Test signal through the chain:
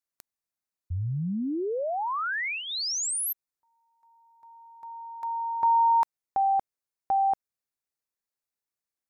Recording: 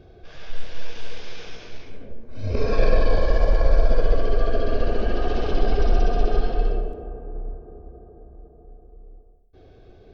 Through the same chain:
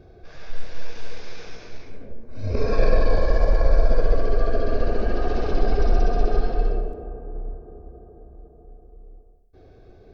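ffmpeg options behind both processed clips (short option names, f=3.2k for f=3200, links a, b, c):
-af "equalizer=f=3.1k:w=3.6:g=-9"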